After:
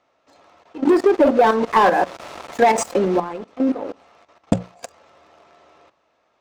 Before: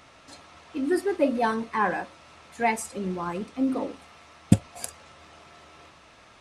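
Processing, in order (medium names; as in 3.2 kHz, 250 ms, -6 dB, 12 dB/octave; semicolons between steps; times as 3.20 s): steep low-pass 7.7 kHz 36 dB/octave; level held to a coarse grid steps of 13 dB; bass shelf 140 Hz -5.5 dB; 0.85–3.20 s: waveshaping leveller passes 3; hum notches 60/120/180 Hz; waveshaping leveller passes 2; peaking EQ 570 Hz +11 dB 2.3 oct; compression 5:1, threshold -8 dBFS, peak gain reduction 6.5 dB; trim -3 dB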